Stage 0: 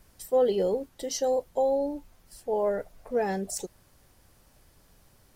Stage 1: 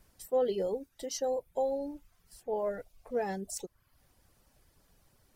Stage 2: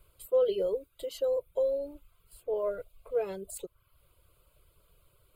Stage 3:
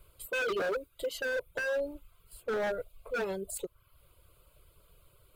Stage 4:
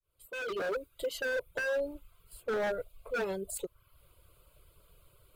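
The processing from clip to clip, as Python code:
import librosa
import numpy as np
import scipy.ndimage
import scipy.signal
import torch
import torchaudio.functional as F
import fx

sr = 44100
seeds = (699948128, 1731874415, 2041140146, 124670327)

y1 = fx.dereverb_blind(x, sr, rt60_s=0.62)
y1 = F.gain(torch.from_numpy(y1), -5.0).numpy()
y2 = fx.fixed_phaser(y1, sr, hz=1200.0, stages=8)
y2 = F.gain(torch.from_numpy(y2), 3.5).numpy()
y3 = 10.0 ** (-29.5 / 20.0) * (np.abs((y2 / 10.0 ** (-29.5 / 20.0) + 3.0) % 4.0 - 2.0) - 1.0)
y3 = F.gain(torch.from_numpy(y3), 3.0).numpy()
y4 = fx.fade_in_head(y3, sr, length_s=0.84)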